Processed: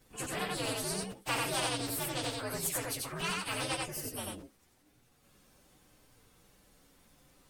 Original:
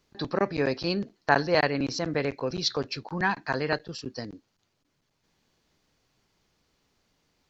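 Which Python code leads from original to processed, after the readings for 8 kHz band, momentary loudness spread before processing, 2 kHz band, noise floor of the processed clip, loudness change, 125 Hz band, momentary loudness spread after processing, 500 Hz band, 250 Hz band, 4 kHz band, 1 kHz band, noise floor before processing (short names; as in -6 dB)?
n/a, 12 LU, -8.5 dB, -68 dBFS, -6.5 dB, -7.5 dB, 7 LU, -11.0 dB, -10.0 dB, -3.5 dB, -8.0 dB, -75 dBFS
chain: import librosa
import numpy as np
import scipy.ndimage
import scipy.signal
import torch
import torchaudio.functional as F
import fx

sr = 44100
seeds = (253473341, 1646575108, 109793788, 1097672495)

p1 = fx.partial_stretch(x, sr, pct=125)
p2 = p1 + fx.echo_single(p1, sr, ms=89, db=-3.5, dry=0)
p3 = fx.spectral_comp(p2, sr, ratio=2.0)
y = p3 * 10.0 ** (-7.0 / 20.0)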